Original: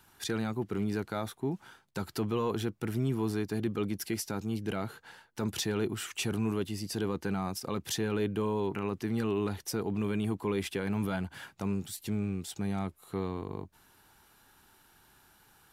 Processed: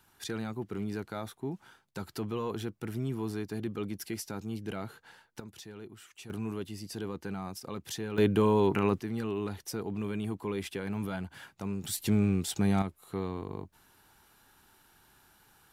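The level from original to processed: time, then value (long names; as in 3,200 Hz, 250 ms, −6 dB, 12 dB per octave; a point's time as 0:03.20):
−3.5 dB
from 0:05.40 −15 dB
from 0:06.30 −5 dB
from 0:08.18 +6.5 dB
from 0:09.00 −3 dB
from 0:11.84 +6.5 dB
from 0:12.82 −0.5 dB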